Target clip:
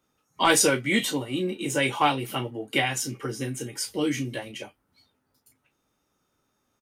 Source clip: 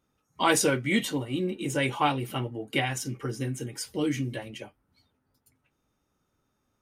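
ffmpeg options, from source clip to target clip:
ffmpeg -i in.wav -filter_complex "[0:a]lowshelf=frequency=170:gain=-8.5,acrossover=split=130|2300[link_01][link_02][link_03];[link_02]aeval=exprs='clip(val(0),-1,0.126)':channel_layout=same[link_04];[link_03]aecho=1:1:16|34:0.562|0.473[link_05];[link_01][link_04][link_05]amix=inputs=3:normalize=0,volume=3.5dB" out.wav

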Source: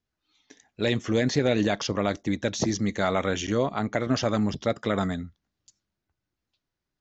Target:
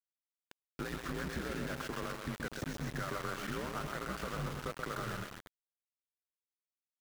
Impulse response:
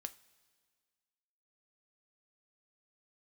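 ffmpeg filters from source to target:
-filter_complex "[0:a]highpass=88,aemphasis=mode=reproduction:type=75kf,agate=range=-33dB:threshold=-47dB:ratio=3:detection=peak,equalizer=frequency=1500:width_type=o:width=0.77:gain=14.5,alimiter=limit=-16dB:level=0:latency=1:release=49,acompressor=threshold=-38dB:ratio=6,afreqshift=-69,aecho=1:1:130|247|352.3|447.1|532.4:0.631|0.398|0.251|0.158|0.1,asplit=2[link_01][link_02];[1:a]atrim=start_sample=2205,lowpass=frequency=5200:width=0.5412,lowpass=frequency=5200:width=1.3066[link_03];[link_02][link_03]afir=irnorm=-1:irlink=0,volume=-6dB[link_04];[link_01][link_04]amix=inputs=2:normalize=0,aeval=exprs='val(0)*gte(abs(val(0)),0.0133)':channel_layout=same,volume=-2dB"

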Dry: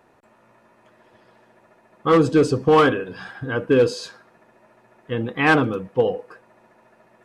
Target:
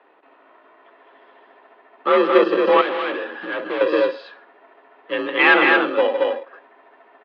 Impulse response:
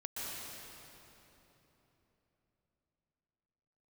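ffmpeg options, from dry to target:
-filter_complex "[0:a]asettb=1/sr,asplit=3[link_01][link_02][link_03];[link_01]atrim=end=5.134[link_04];[link_02]atrim=start=5.13:end=6.07,asetpts=PTS-STARTPTS,afade=type=in:duration=0.004:curve=qsin,afade=type=out:start_time=0.936:duration=0.004:curve=qsin,equalizer=frequency=2400:width=0.54:gain=7.5[link_05];[link_03]atrim=start=6.066[link_06];[link_04][link_05]acrossfade=duration=0.004:curve1=hsin:curve2=qsin[link_07];[link_07][link_06]acrossfade=duration=0.004:curve1=qsin:curve2=hsin,asoftclip=type=tanh:threshold=-11dB,asplit=2[link_08][link_09];[link_09]aecho=0:1:160.3|224.5:0.316|0.708[link_10];[link_08][link_10]amix=inputs=2:normalize=0,asettb=1/sr,asplit=3[link_11][link_12][link_13];[link_11]atrim=end=2.814[link_14];[link_12]atrim=start=2.81:end=3.81,asetpts=PTS-STARTPTS,afade=type=in:duration=0.004:curve=qsin,afade=type=out:start_time=0.996:duration=0.004:curve=qsin,asoftclip=type=hard:threshold=-24.5dB[link_15];[link_13]atrim=start=3.806[link_16];[link_14][link_15]acrossfade=duration=0.004:curve1=hsin:curve2=qsin[link_17];[link_17][link_16]acrossfade=duration=0.004:curve1=qsin:curve2=hsin,acrossover=split=380[link_18][link_19];[link_18]acrusher=samples=31:mix=1:aa=0.000001[link_20];[link_20][link_19]amix=inputs=2:normalize=0,highpass=frequency=240:width_type=q:width=0.5412,highpass=frequency=240:width_type=q:width=1.307,lowpass=frequency=3500:width_type=q:width=0.5176,lowpass=frequency=3500:width_type=q:width=0.7071,lowpass=frequency=3500:width_type=q:width=1.932,afreqshift=51,volume=3dB"

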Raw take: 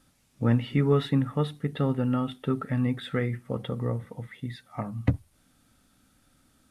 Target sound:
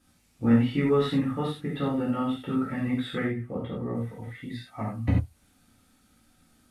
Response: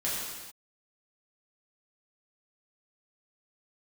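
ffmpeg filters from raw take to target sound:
-filter_complex "[0:a]asettb=1/sr,asplit=3[link_01][link_02][link_03];[link_01]atrim=end=3.234[link_04];[link_02]atrim=start=3.23:end=3.95,asetpts=PTS-STARTPTS,afade=type=in:duration=0.004:curve=qsin,afade=type=out:start_time=0.716:duration=0.004:curve=qsin,highshelf=frequency=2100:gain=-11[link_05];[link_03]atrim=start=3.946[link_06];[link_04][link_05]acrossfade=duration=0.004:curve1=hsin:curve2=qsin[link_07];[link_07][link_06]acrossfade=duration=0.004:curve1=qsin:curve2=hsin[link_08];[1:a]atrim=start_sample=2205,atrim=end_sample=6174,asetrate=57330,aresample=44100[link_09];[link_08][link_09]afir=irnorm=-1:irlink=0,volume=-2.5dB"

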